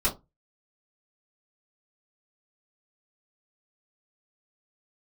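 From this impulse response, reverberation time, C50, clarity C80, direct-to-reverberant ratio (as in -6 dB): 0.20 s, 14.5 dB, 23.0 dB, -7.5 dB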